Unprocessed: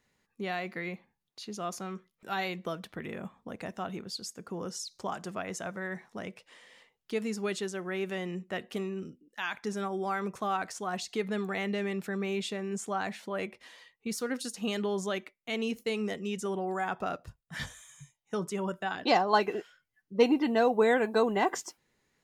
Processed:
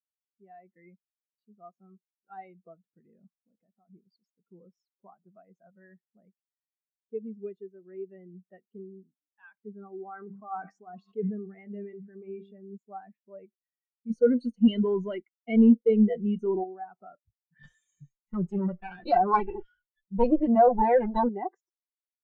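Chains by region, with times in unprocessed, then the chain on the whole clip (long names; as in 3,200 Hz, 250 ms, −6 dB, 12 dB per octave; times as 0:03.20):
0:03.33–0:03.90: downward compressor 3 to 1, threshold −39 dBFS + mains-hum notches 50/100/150 Hz
0:10.09–0:12.58: hum removal 98.53 Hz, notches 39 + level that may fall only so fast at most 24 dB per second
0:14.10–0:16.64: gain on one half-wave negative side −3 dB + EQ curve with evenly spaced ripples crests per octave 1.9, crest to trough 9 dB + leveller curve on the samples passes 3
0:17.63–0:21.29: lower of the sound and its delayed copy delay 5.6 ms + high-shelf EQ 2,700 Hz +8 dB + envelope flattener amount 50%
whole clip: low-pass filter 3,600 Hz 6 dB per octave; automatic gain control gain up to 8 dB; every bin expanded away from the loudest bin 2.5 to 1; level −6 dB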